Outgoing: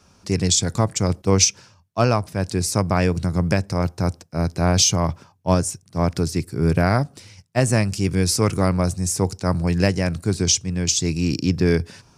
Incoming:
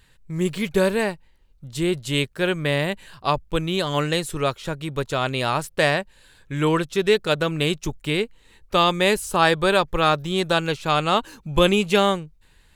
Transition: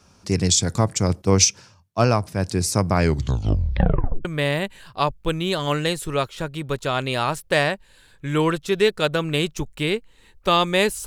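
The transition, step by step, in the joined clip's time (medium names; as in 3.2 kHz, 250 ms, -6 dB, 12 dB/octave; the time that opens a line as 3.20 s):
outgoing
2.95 s: tape stop 1.30 s
4.25 s: go over to incoming from 2.52 s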